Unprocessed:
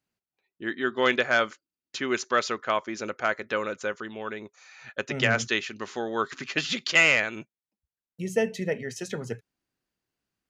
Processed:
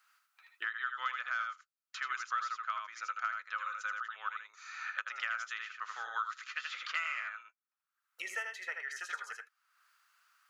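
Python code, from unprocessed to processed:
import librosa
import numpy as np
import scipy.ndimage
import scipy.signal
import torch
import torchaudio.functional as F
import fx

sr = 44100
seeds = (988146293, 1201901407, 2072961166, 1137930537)

y = fx.ladder_highpass(x, sr, hz=1200.0, resonance_pct=75)
y = y + 10.0 ** (-5.0 / 20.0) * np.pad(y, (int(79 * sr / 1000.0), 0))[:len(y)]
y = fx.band_squash(y, sr, depth_pct=100)
y = F.gain(torch.from_numpy(y), -6.0).numpy()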